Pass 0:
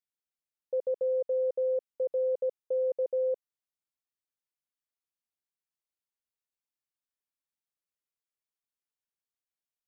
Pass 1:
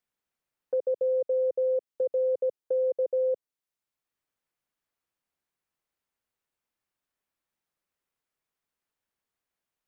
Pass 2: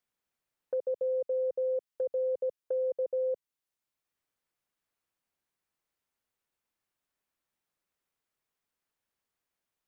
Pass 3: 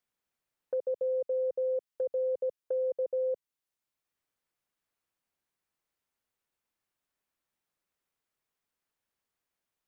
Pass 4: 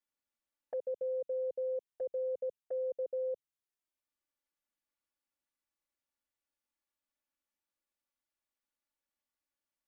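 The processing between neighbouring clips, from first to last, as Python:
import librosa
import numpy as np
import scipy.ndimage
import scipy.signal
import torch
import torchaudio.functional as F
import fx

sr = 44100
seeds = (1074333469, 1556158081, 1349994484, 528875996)

y1 = fx.dynamic_eq(x, sr, hz=380.0, q=0.77, threshold_db=-43.0, ratio=4.0, max_db=5)
y1 = fx.band_squash(y1, sr, depth_pct=40)
y1 = F.gain(torch.from_numpy(y1), -1.5).numpy()
y2 = fx.dynamic_eq(y1, sr, hz=400.0, q=0.73, threshold_db=-39.0, ratio=4.0, max_db=-5)
y3 = y2
y4 = fx.env_flanger(y3, sr, rest_ms=3.5, full_db=-30.0)
y4 = F.gain(torch.from_numpy(y4), -4.0).numpy()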